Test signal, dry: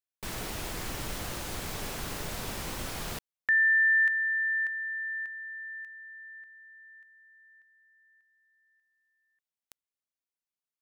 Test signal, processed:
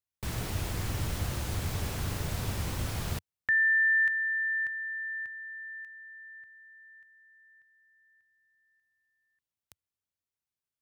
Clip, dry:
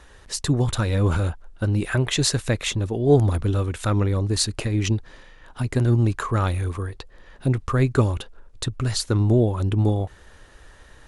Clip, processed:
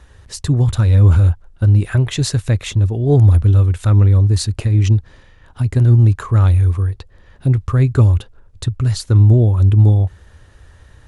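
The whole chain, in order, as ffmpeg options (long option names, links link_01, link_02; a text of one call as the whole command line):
ffmpeg -i in.wav -af "equalizer=frequency=89:width=0.89:gain=14.5,volume=-1.5dB" out.wav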